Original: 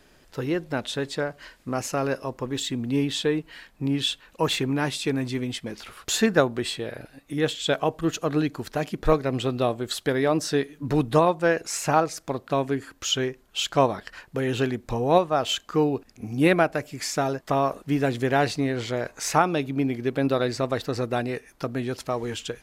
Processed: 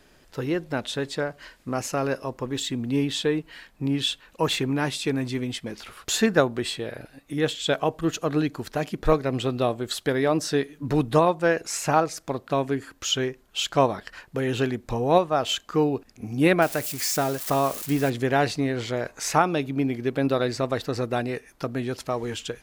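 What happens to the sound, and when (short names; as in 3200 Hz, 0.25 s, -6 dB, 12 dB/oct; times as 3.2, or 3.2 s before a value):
16.62–18.1 switching spikes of -24 dBFS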